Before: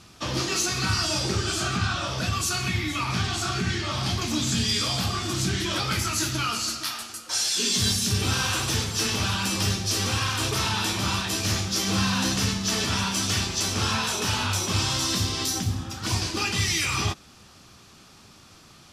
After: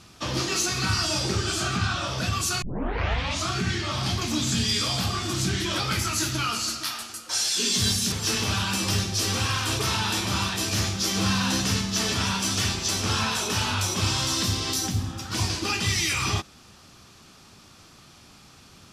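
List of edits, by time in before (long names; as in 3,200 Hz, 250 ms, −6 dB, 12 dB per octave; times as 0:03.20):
0:02.62: tape start 0.89 s
0:08.12–0:08.84: remove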